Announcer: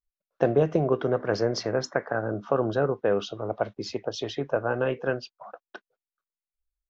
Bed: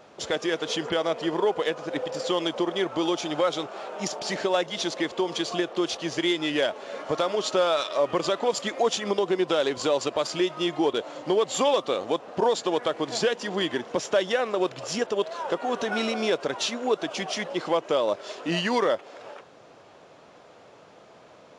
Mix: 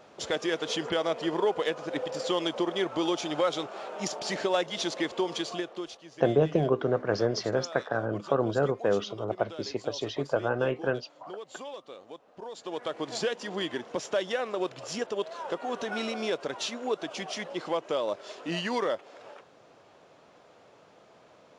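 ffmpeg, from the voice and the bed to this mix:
-filter_complex "[0:a]adelay=5800,volume=-1.5dB[a];[1:a]volume=11dB,afade=t=out:st=5.24:d=0.78:silence=0.149624,afade=t=in:st=12.5:d=0.5:silence=0.211349[b];[a][b]amix=inputs=2:normalize=0"

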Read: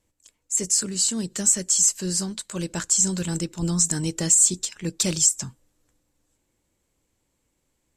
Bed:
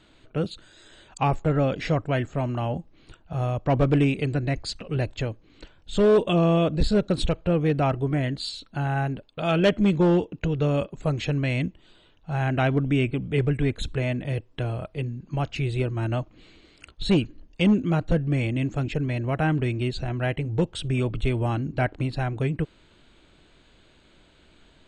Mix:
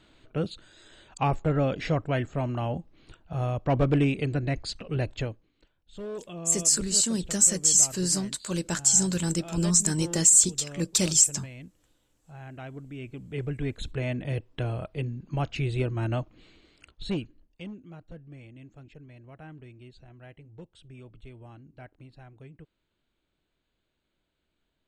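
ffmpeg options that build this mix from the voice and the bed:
-filter_complex "[0:a]adelay=5950,volume=-0.5dB[a];[1:a]volume=14dB,afade=t=out:st=5.22:d=0.3:silence=0.158489,afade=t=in:st=12.94:d=1.48:silence=0.149624,afade=t=out:st=16.1:d=1.62:silence=0.0944061[b];[a][b]amix=inputs=2:normalize=0"

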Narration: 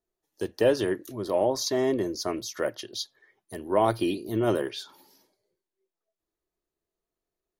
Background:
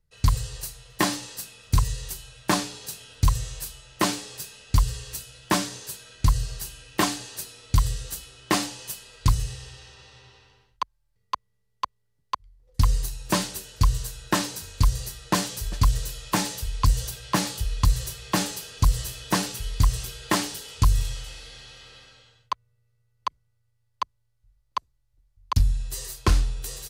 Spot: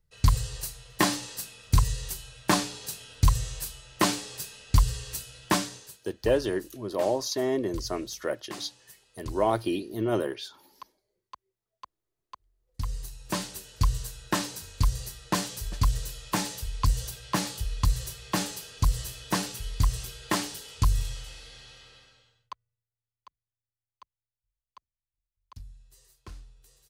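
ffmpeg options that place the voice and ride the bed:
-filter_complex "[0:a]adelay=5650,volume=-2dB[a];[1:a]volume=13dB,afade=t=out:st=5.44:d=0.57:silence=0.141254,afade=t=in:st=12.57:d=1.24:silence=0.211349,afade=t=out:st=21.73:d=1.13:silence=0.0891251[b];[a][b]amix=inputs=2:normalize=0"

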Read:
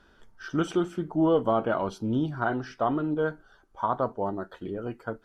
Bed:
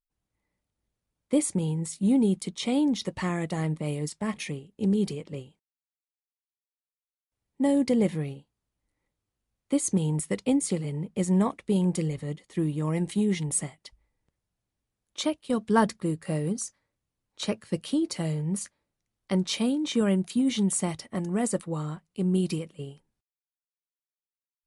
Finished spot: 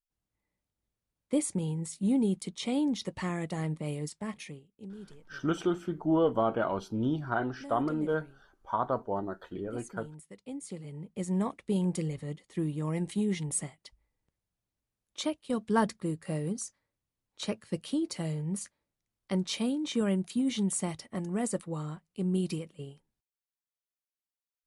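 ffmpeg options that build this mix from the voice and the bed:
-filter_complex "[0:a]adelay=4900,volume=-3dB[a];[1:a]volume=11.5dB,afade=t=out:st=3.99:d=0.91:silence=0.158489,afade=t=in:st=10.39:d=1.34:silence=0.158489[b];[a][b]amix=inputs=2:normalize=0"

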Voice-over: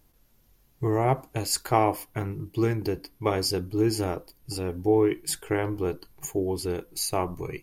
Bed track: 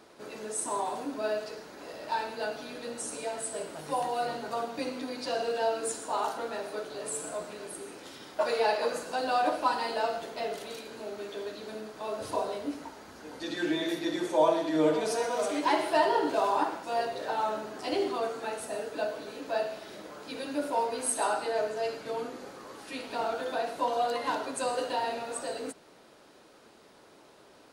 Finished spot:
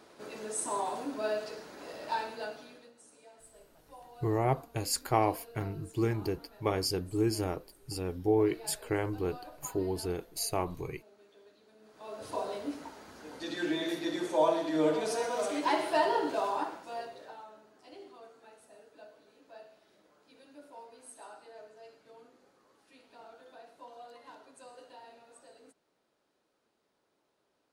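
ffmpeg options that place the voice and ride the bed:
-filter_complex "[0:a]adelay=3400,volume=-5dB[a];[1:a]volume=17.5dB,afade=t=out:st=2.11:d=0.81:silence=0.1,afade=t=in:st=11.78:d=0.77:silence=0.112202,afade=t=out:st=16.11:d=1.35:silence=0.11885[b];[a][b]amix=inputs=2:normalize=0"

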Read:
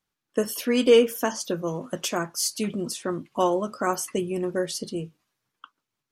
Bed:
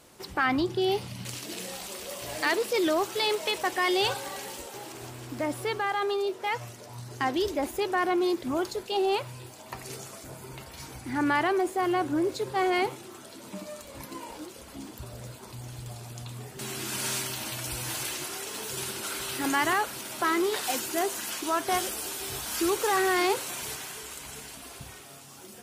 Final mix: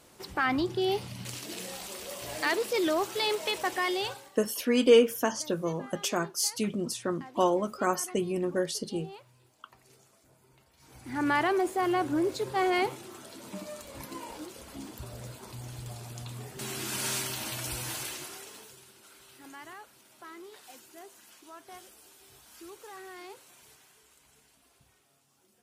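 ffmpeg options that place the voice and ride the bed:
-filter_complex "[0:a]adelay=4000,volume=-2.5dB[a];[1:a]volume=17dB,afade=t=out:st=3.75:d=0.57:silence=0.125893,afade=t=in:st=10.8:d=0.53:silence=0.112202,afade=t=out:st=17.69:d=1.11:silence=0.1[b];[a][b]amix=inputs=2:normalize=0"

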